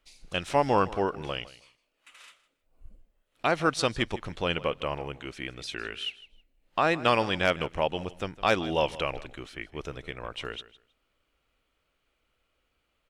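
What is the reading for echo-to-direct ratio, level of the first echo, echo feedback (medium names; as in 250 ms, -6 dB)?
-18.0 dB, -18.0 dB, 18%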